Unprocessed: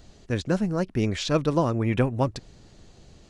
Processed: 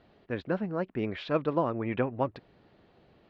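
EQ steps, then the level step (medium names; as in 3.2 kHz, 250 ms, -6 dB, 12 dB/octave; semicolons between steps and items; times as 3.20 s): high-pass 440 Hz 6 dB/octave; low-pass 5.6 kHz 12 dB/octave; distance through air 430 m; 0.0 dB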